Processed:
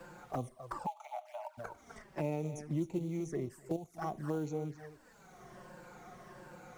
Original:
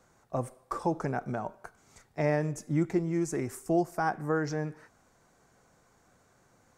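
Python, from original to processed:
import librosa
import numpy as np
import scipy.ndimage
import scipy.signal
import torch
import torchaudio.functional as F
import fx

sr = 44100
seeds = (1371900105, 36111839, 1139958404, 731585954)

y = fx.spec_ripple(x, sr, per_octave=1.3, drift_hz=-1.4, depth_db=10)
y = fx.peak_eq(y, sr, hz=9100.0, db=7.0, octaves=2.6, at=(2.32, 2.8))
y = y + 10.0 ** (-14.5 / 20.0) * np.pad(y, (int(253 * sr / 1000.0), 0))[:len(y)]
y = fx.quant_companded(y, sr, bits=6)
y = fx.high_shelf(y, sr, hz=7100.0, db=-5.0)
y = fx.level_steps(y, sr, step_db=12, at=(3.45, 4.01), fade=0.02)
y = fx.env_flanger(y, sr, rest_ms=6.0, full_db=-27.5)
y = fx.cheby_ripple_highpass(y, sr, hz=600.0, ripple_db=9, at=(0.85, 1.57), fade=0.02)
y = fx.band_squash(y, sr, depth_pct=70)
y = F.gain(torch.from_numpy(y), -6.0).numpy()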